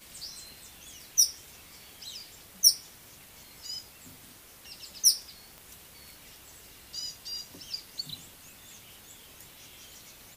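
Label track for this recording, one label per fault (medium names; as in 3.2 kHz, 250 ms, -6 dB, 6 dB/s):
5.580000	5.580000	pop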